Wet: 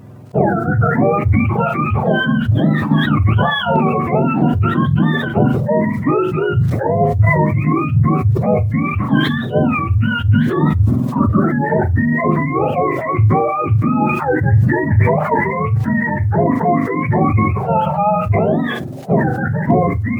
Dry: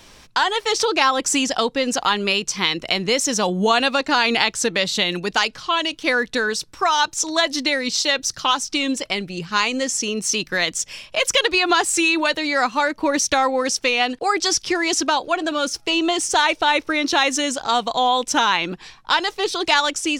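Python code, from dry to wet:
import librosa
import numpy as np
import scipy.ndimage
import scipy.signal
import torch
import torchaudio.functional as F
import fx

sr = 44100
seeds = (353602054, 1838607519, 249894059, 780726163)

p1 = fx.octave_mirror(x, sr, pivot_hz=790.0)
p2 = scipy.signal.sosfilt(scipy.signal.butter(2, 1200.0, 'lowpass', fs=sr, output='sos'), p1)
p3 = fx.tilt_eq(p2, sr, slope=2.0)
p4 = fx.rider(p3, sr, range_db=10, speed_s=0.5)
p5 = p3 + (p4 * 10.0 ** (2.5 / 20.0))
p6 = fx.quant_dither(p5, sr, seeds[0], bits=10, dither='none')
p7 = p6 + fx.room_flutter(p6, sr, wall_m=6.6, rt60_s=0.2, dry=0)
p8 = fx.wow_flutter(p7, sr, seeds[1], rate_hz=2.1, depth_cents=29.0)
p9 = fx.sustainer(p8, sr, db_per_s=34.0)
y = p9 * 10.0 ** (-2.0 / 20.0)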